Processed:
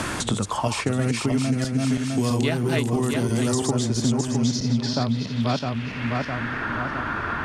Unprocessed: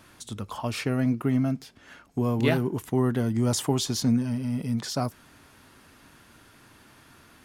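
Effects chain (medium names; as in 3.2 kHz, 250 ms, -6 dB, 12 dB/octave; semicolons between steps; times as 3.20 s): backward echo that repeats 329 ms, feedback 49%, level -1 dB; low-pass sweep 8.2 kHz -> 1.4 kHz, 4.01–6.82 s; three bands compressed up and down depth 100%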